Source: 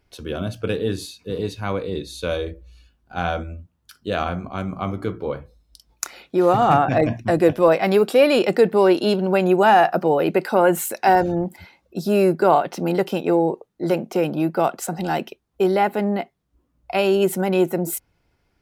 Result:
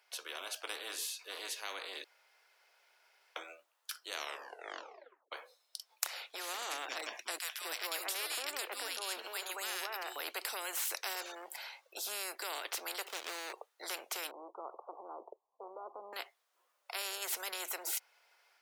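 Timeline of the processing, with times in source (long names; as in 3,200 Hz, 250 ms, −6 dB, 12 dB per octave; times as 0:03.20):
0:02.04–0:03.36: fill with room tone
0:04.14: tape stop 1.18 s
0:07.38–0:10.16: three-band delay without the direct sound highs, mids, lows 230/580 ms, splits 260/1,500 Hz
0:13.07–0:13.53: running median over 41 samples
0:14.31–0:16.13: Butterworth low-pass 1,100 Hz 96 dB per octave
whole clip: Bessel high-pass filter 920 Hz, order 8; automatic gain control gain up to 3 dB; every bin compressed towards the loudest bin 4 to 1; level −7.5 dB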